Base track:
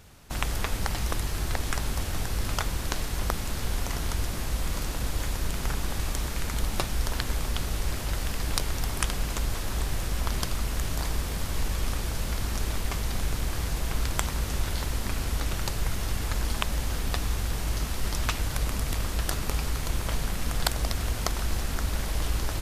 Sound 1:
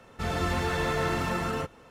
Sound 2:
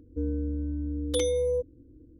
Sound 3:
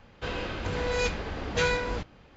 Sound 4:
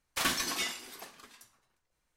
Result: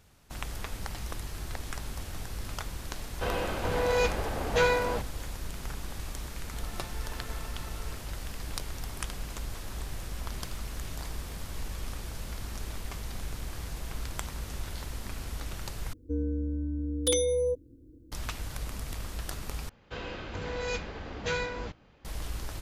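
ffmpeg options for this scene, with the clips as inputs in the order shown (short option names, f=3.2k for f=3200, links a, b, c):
-filter_complex "[3:a]asplit=2[a][b];[0:a]volume=-8.5dB[c];[a]equalizer=f=710:w=0.82:g=8[d];[1:a]highpass=500[e];[4:a]acompressor=threshold=-37dB:ratio=6:attack=3.2:release=140:knee=1:detection=peak[f];[2:a]highshelf=f=4.4k:g=10[g];[c]asplit=3[h][i][j];[h]atrim=end=15.934[k];[g]atrim=end=2.19,asetpts=PTS-STARTPTS,volume=-1dB[l];[i]atrim=start=18.116:end=19.694[m];[b]atrim=end=2.36,asetpts=PTS-STARTPTS,volume=-5.5dB[n];[j]atrim=start=22.046[o];[d]atrim=end=2.36,asetpts=PTS-STARTPTS,volume=-2.5dB,afade=t=in:d=0.004:c=hsin,afade=t=out:st=2.356:d=0.004:c=hsin,adelay=2990[p];[e]atrim=end=1.9,asetpts=PTS-STARTPTS,volume=-17.5dB,afade=t=in:d=0.004:c=hsin,afade=t=out:st=1.896:d=0.004:c=hsin,adelay=6320[q];[f]atrim=end=2.16,asetpts=PTS-STARTPTS,volume=-15dB,afade=t=in:d=0.004:c=hsin,afade=t=out:st=2.156:d=0.004:c=hsin,adelay=10280[r];[k][l]acrossfade=d=0.004:c1=hsin:c2=hsin[s];[s][m]acrossfade=d=0.004:c1=hsin:c2=hsin[t];[t][n]acrossfade=d=0.004:c1=hsin:c2=hsin[u];[u][o]acrossfade=d=0.004:c1=hsin:c2=hsin[v];[v][p][q][r]amix=inputs=4:normalize=0"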